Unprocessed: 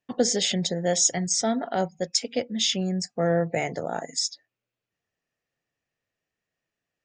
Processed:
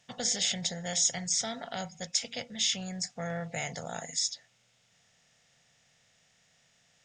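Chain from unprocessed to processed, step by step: spectral levelling over time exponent 0.6; FFT filter 130 Hz 0 dB, 340 Hz -19 dB, 700 Hz -7 dB, 2.2 kHz -1 dB; trim -6 dB

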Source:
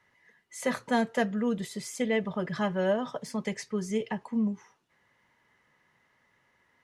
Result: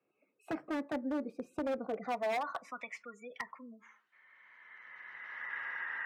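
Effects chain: gliding tape speed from 131% -> 95%; recorder AGC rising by 16 dB/s; dynamic bell 1.2 kHz, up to +3 dB, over -43 dBFS, Q 1; spectral gate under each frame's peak -25 dB strong; band-pass sweep 400 Hz -> 1.7 kHz, 1.81–2.78 s; wavefolder -28.5 dBFS; high-pass 50 Hz; reverberation RT60 0.35 s, pre-delay 3 ms, DRR 19 dB

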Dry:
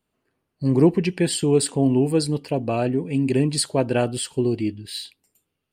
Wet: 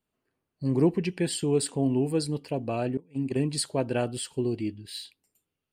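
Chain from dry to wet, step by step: 2.97–3.50 s: gate -20 dBFS, range -21 dB; trim -6.5 dB

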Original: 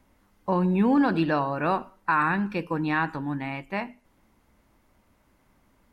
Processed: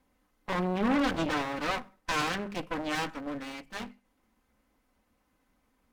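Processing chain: comb filter that takes the minimum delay 3.9 ms; hum notches 50/100/150/200 Hz; Chebyshev shaper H 6 -10 dB, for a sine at -12.5 dBFS; trim -6.5 dB

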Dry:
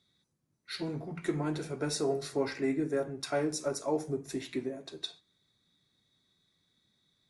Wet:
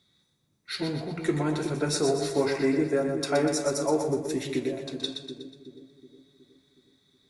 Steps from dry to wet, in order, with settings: two-band feedback delay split 400 Hz, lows 368 ms, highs 122 ms, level -6.5 dB; trim +5.5 dB

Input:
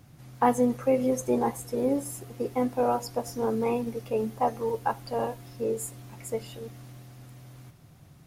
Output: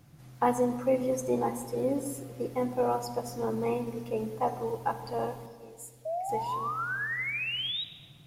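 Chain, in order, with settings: 5.46–6.29 s: amplifier tone stack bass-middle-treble 5-5-5; 6.05–7.84 s: painted sound rise 620–3900 Hz -30 dBFS; simulated room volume 2900 m³, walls mixed, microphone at 0.76 m; trim -3.5 dB

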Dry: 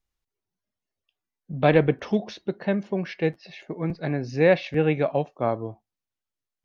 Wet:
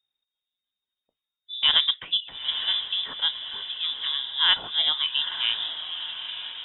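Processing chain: formant shift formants +2 st; frequency inversion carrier 3.7 kHz; echo that smears into a reverb 915 ms, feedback 51%, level -8.5 dB; trim -2.5 dB

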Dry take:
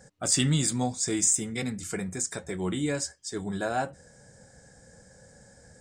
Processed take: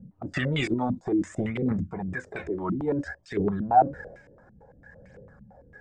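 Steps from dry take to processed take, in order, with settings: transient shaper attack -2 dB, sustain +10 dB; phaser 0.58 Hz, delay 3.5 ms, feedback 54%; step-sequenced low-pass 8.9 Hz 210–2400 Hz; trim -2 dB

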